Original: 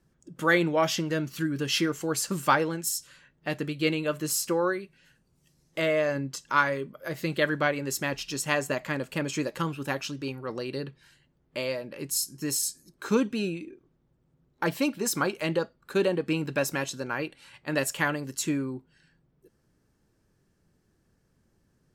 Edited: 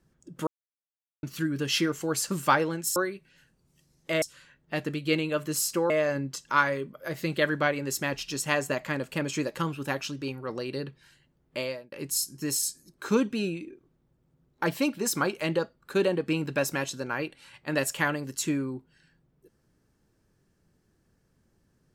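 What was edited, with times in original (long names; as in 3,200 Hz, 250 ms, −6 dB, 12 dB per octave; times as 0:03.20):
0:00.47–0:01.23: silence
0:04.64–0:05.90: move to 0:02.96
0:11.61–0:11.92: fade out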